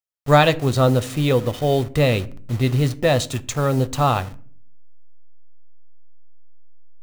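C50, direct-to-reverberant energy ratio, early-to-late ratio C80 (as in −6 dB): 20.5 dB, 11.5 dB, 24.0 dB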